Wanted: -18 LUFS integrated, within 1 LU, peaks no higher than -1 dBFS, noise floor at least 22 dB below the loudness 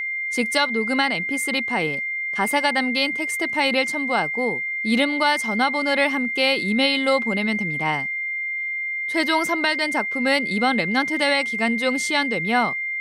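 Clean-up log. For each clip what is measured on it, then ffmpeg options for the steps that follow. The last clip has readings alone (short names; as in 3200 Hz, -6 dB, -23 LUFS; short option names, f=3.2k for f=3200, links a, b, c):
steady tone 2100 Hz; tone level -24 dBFS; loudness -21.0 LUFS; peak -7.5 dBFS; loudness target -18.0 LUFS
-> -af "bandreject=f=2.1k:w=30"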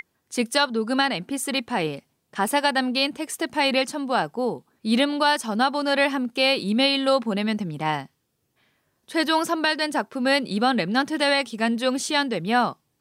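steady tone none; loudness -23.0 LUFS; peak -8.5 dBFS; loudness target -18.0 LUFS
-> -af "volume=5dB"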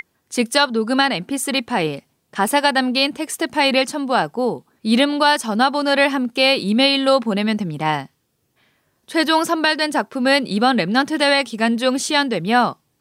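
loudness -18.0 LUFS; peak -3.5 dBFS; noise floor -68 dBFS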